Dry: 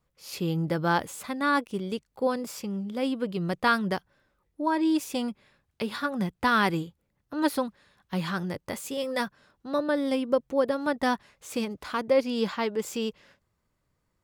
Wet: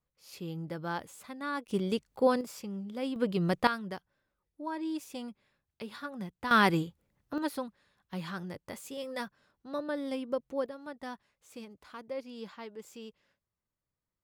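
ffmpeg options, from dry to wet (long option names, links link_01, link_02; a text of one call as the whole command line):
ffmpeg -i in.wav -af "asetnsamples=nb_out_samples=441:pad=0,asendcmd='1.68 volume volume 1dB;2.41 volume volume -6.5dB;3.16 volume volume 0.5dB;3.67 volume volume -11dB;6.51 volume volume 0dB;7.38 volume volume -8.5dB;10.66 volume volume -16dB',volume=-11dB" out.wav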